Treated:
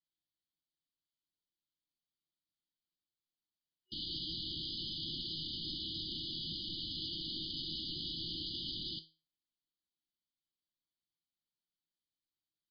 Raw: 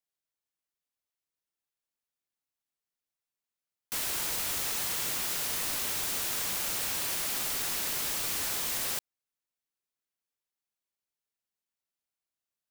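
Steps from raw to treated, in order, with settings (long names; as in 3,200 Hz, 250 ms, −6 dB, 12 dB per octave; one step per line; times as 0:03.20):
tuned comb filter 160 Hz, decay 0.33 s, harmonics all, mix 70%
brick-wall band-stop 370–2,900 Hz
level +8.5 dB
MP3 16 kbit/s 11,025 Hz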